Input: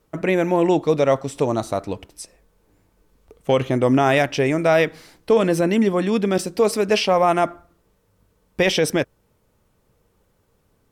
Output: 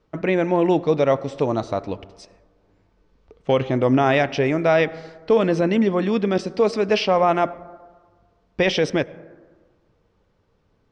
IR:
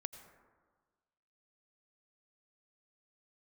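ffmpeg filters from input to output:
-filter_complex "[0:a]lowpass=f=5.5k:w=0.5412,lowpass=f=5.5k:w=1.3066,asplit=2[a][b];[1:a]atrim=start_sample=2205,highshelf=f=4.1k:g=-8.5[c];[b][c]afir=irnorm=-1:irlink=0,volume=-3.5dB[d];[a][d]amix=inputs=2:normalize=0,volume=-4dB"

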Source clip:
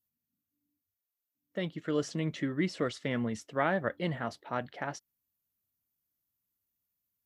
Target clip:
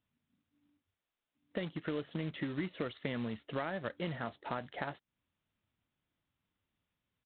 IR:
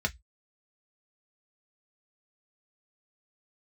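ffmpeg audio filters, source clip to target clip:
-af "acompressor=threshold=-46dB:ratio=5,aresample=8000,acrusher=bits=3:mode=log:mix=0:aa=0.000001,aresample=44100,volume=9.5dB"

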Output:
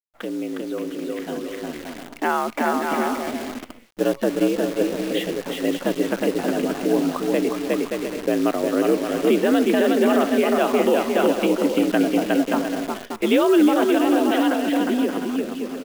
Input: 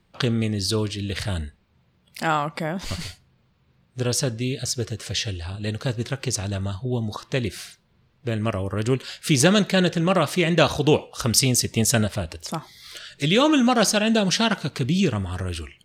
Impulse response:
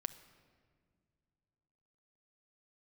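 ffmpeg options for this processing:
-af "highpass=f=210:t=q:w=0.5412,highpass=f=210:t=q:w=1.307,lowpass=f=3.3k:t=q:w=0.5176,lowpass=f=3.3k:t=q:w=0.7071,lowpass=f=3.3k:t=q:w=1.932,afreqshift=64,afftdn=nr=18:nf=-40,aemphasis=mode=reproduction:type=riaa,aecho=1:1:360|576|705.6|783.4|830:0.631|0.398|0.251|0.158|0.1,alimiter=limit=-13.5dB:level=0:latency=1:release=219,acrusher=bits=7:dc=4:mix=0:aa=0.000001,dynaudnorm=f=120:g=31:m=11.5dB,volume=-5.5dB"

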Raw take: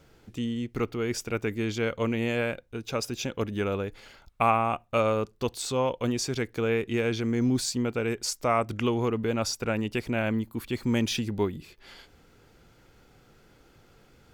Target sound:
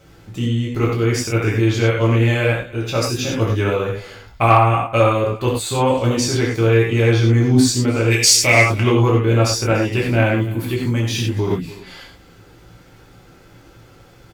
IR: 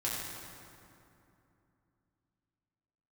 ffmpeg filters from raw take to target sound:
-filter_complex "[0:a]asplit=3[a][b][c];[a]afade=t=out:st=8.1:d=0.02[d];[b]highshelf=f=1.7k:t=q:w=3:g=9.5,afade=t=in:st=8.1:d=0.02,afade=t=out:st=8.57:d=0.02[e];[c]afade=t=in:st=8.57:d=0.02[f];[d][e][f]amix=inputs=3:normalize=0,aecho=1:1:288:0.0891[g];[1:a]atrim=start_sample=2205,afade=t=out:st=0.17:d=0.01,atrim=end_sample=7938[h];[g][h]afir=irnorm=-1:irlink=0,acontrast=74,asettb=1/sr,asplit=3[i][j][k];[i]atrim=end=5.034[l];[j]atrim=start=5.03:end=5.98,asetpts=PTS-STARTPTS,afade=t=in:d=0.004:c=qsin,afade=t=out:st=0.946:d=0.004:c=qsin,equalizer=f=5.5k:t=o:w=0.28:g=-14[m];[k]atrim=start=5.976[n];[l][m]acrossfade=d=0.004:c1=hsin:c2=qsin[o];[o][n]acrossfade=d=0.004:c1=qsin:c2=hsin,asettb=1/sr,asplit=3[p][q][r];[p]atrim=end=10.544[s];[q]atrim=start=10.54:end=11.51,asetpts=PTS-STARTPTS,afade=t=in:d=0.004:c=qsin,afade=t=out:st=0.966:d=0.004:c=qsin,acompressor=threshold=-17dB:ratio=6[t];[r]atrim=start=11.506[u];[s][t]acrossfade=d=0.004:c1=hsin:c2=qsin[v];[v][u]acrossfade=d=0.004:c1=qsin:c2=hsin,volume=1dB"

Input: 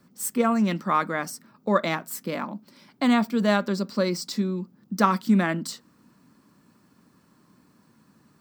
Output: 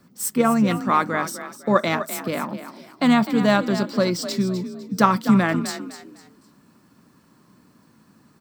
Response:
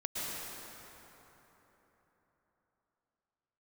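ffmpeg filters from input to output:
-filter_complex "[0:a]asplit=2[a][b];[b]asetrate=29433,aresample=44100,atempo=1.49831,volume=-16dB[c];[a][c]amix=inputs=2:normalize=0,asplit=4[d][e][f][g];[e]adelay=252,afreqshift=36,volume=-11.5dB[h];[f]adelay=504,afreqshift=72,volume=-21.7dB[i];[g]adelay=756,afreqshift=108,volume=-31.8dB[j];[d][h][i][j]amix=inputs=4:normalize=0,volume=3.5dB"

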